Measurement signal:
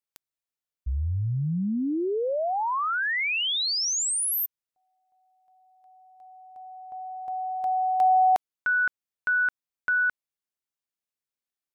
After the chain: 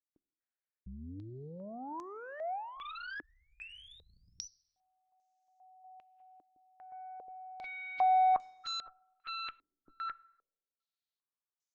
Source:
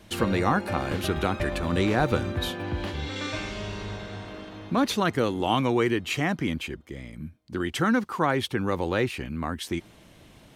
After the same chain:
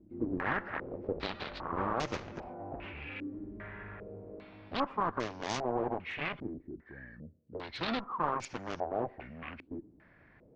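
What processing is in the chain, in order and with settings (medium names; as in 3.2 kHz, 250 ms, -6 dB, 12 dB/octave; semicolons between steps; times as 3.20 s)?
knee-point frequency compression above 1.1 kHz 1.5:1; Chebyshev shaper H 4 -42 dB, 5 -31 dB, 7 -12 dB, 8 -41 dB, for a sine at -10 dBFS; saturation -19 dBFS; plate-style reverb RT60 1.1 s, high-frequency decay 0.65×, pre-delay 0 ms, DRR 20 dB; step-sequenced low-pass 2.5 Hz 310–6300 Hz; trim -7 dB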